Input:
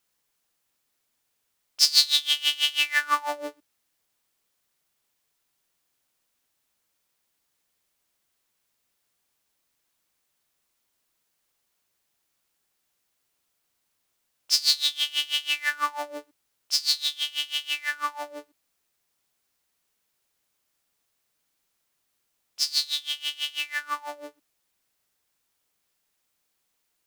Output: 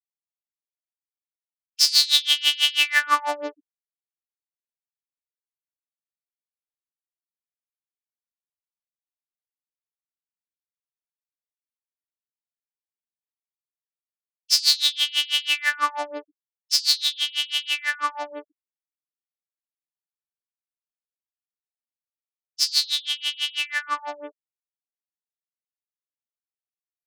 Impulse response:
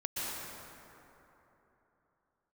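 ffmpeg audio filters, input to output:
-af "afftfilt=real='re*gte(hypot(re,im),0.00708)':imag='im*gte(hypot(re,im),0.00708)':win_size=1024:overlap=0.75,alimiter=level_in=5dB:limit=-1dB:release=50:level=0:latency=1,volume=-1dB"

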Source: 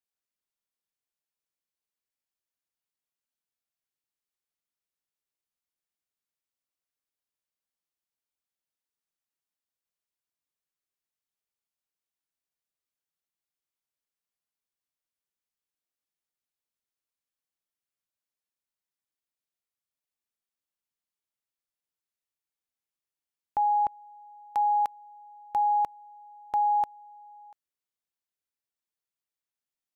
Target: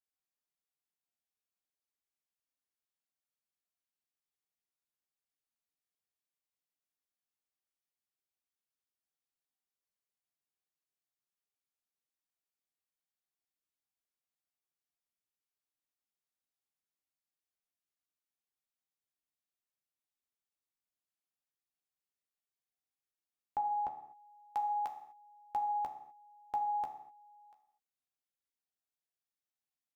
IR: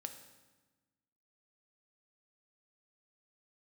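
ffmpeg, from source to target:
-filter_complex "[0:a]asplit=2[link_01][link_02];[link_02]adelay=14,volume=-8dB[link_03];[link_01][link_03]amix=inputs=2:normalize=0[link_04];[1:a]atrim=start_sample=2205,afade=type=out:start_time=0.41:duration=0.01,atrim=end_sample=18522,asetrate=61740,aresample=44100[link_05];[link_04][link_05]afir=irnorm=-1:irlink=0"

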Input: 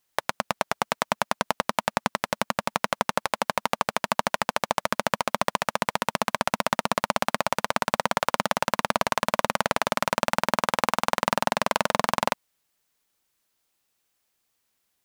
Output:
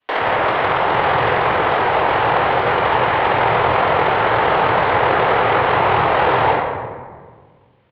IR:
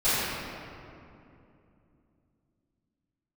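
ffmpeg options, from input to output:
-filter_complex "[0:a]highpass=frequency=230:width_type=q:width=0.5412,highpass=frequency=230:width_type=q:width=1.307,lowpass=frequency=3300:width_type=q:width=0.5176,lowpass=frequency=3300:width_type=q:width=0.7071,lowpass=frequency=3300:width_type=q:width=1.932,afreqshift=-110,acrossover=split=470|2400[link_01][link_02][link_03];[link_01]acompressor=threshold=-39dB:ratio=4[link_04];[link_02]acompressor=threshold=-29dB:ratio=4[link_05];[link_03]acompressor=threshold=-43dB:ratio=4[link_06];[link_04][link_05][link_06]amix=inputs=3:normalize=0[link_07];[1:a]atrim=start_sample=2205,asetrate=36162,aresample=44100[link_08];[link_07][link_08]afir=irnorm=-1:irlink=0,atempo=1.9,volume=1.5dB"

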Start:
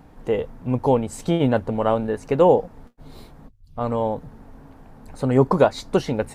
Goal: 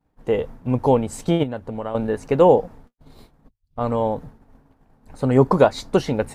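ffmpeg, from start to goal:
ffmpeg -i in.wav -filter_complex "[0:a]agate=range=-33dB:threshold=-34dB:ratio=3:detection=peak,asettb=1/sr,asplit=3[link_01][link_02][link_03];[link_01]atrim=end=1.434[link_04];[link_02]atrim=start=1.43:end=1.95,asetpts=PTS-STARTPTS,afade=type=in:duration=0.004:curve=qsin,afade=type=out:start_time=0.516:duration=0.004:curve=qsin,acompressor=threshold=-28dB:ratio=5[link_05];[link_03]atrim=start=1.946[link_06];[link_04][link_05]acrossfade=duration=0.004:curve1=hsin:curve2=qsin[link_07];[link_07][link_06]acrossfade=duration=0.004:curve1=qsin:curve2=hsin,volume=1.5dB" out.wav

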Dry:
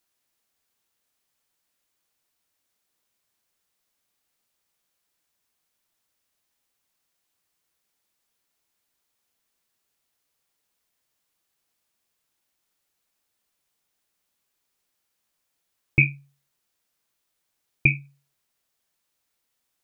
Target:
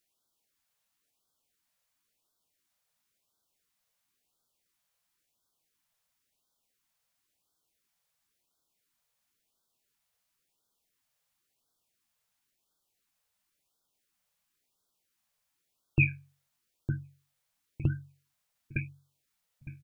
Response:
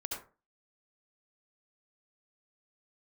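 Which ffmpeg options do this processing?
-filter_complex "[0:a]asplit=2[link_01][link_02];[link_02]adelay=909,lowpass=frequency=880:poles=1,volume=-6dB,asplit=2[link_03][link_04];[link_04]adelay=909,lowpass=frequency=880:poles=1,volume=0.34,asplit=2[link_05][link_06];[link_06]adelay=909,lowpass=frequency=880:poles=1,volume=0.34,asplit=2[link_07][link_08];[link_08]adelay=909,lowpass=frequency=880:poles=1,volume=0.34[link_09];[link_01][link_03][link_05][link_07][link_09]amix=inputs=5:normalize=0,asplit=2[link_10][link_11];[link_11]asetrate=29433,aresample=44100,atempo=1.49831,volume=-9dB[link_12];[link_10][link_12]amix=inputs=2:normalize=0,afftfilt=real='re*(1-between(b*sr/1024,290*pow(2300/290,0.5+0.5*sin(2*PI*0.96*pts/sr))/1.41,290*pow(2300/290,0.5+0.5*sin(2*PI*0.96*pts/sr))*1.41))':imag='im*(1-between(b*sr/1024,290*pow(2300/290,0.5+0.5*sin(2*PI*0.96*pts/sr))/1.41,290*pow(2300/290,0.5+0.5*sin(2*PI*0.96*pts/sr))*1.41))':win_size=1024:overlap=0.75,volume=-3.5dB"

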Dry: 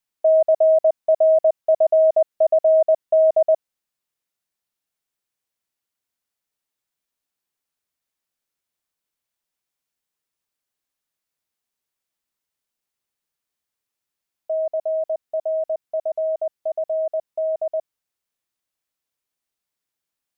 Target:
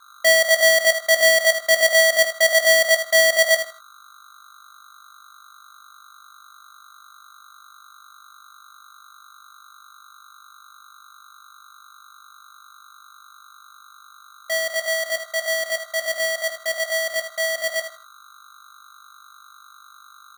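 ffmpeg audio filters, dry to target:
ffmpeg -i in.wav -filter_complex "[0:a]highpass=frequency=470:poles=1,aeval=exprs='val(0)+0.00398*(sin(2*PI*50*n/s)+sin(2*PI*2*50*n/s)/2+sin(2*PI*3*50*n/s)/3+sin(2*PI*4*50*n/s)/4+sin(2*PI*5*50*n/s)/5)':channel_layout=same,afreqshift=15,asplit=2[link_01][link_02];[link_02]adelay=20,volume=-8dB[link_03];[link_01][link_03]amix=inputs=2:normalize=0,aecho=1:1:79|158|237:0.316|0.0664|0.0139,aeval=exprs='val(0)*sgn(sin(2*PI*1300*n/s))':channel_layout=same" out.wav

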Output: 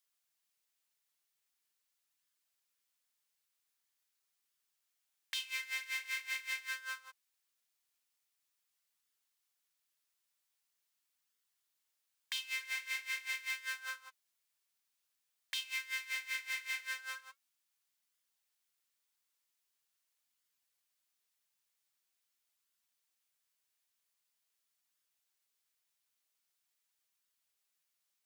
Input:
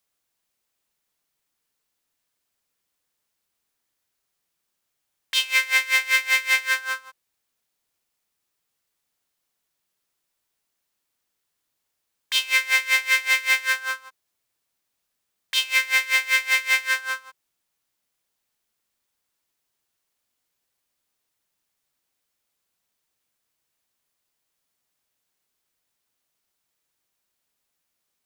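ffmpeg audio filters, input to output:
ffmpeg -i in.wav -af "tiltshelf=frequency=840:gain=-6.5,flanger=delay=0.6:depth=9.4:regen=-58:speed=0.44:shape=sinusoidal,acompressor=threshold=-33dB:ratio=3,volume=-7dB" out.wav

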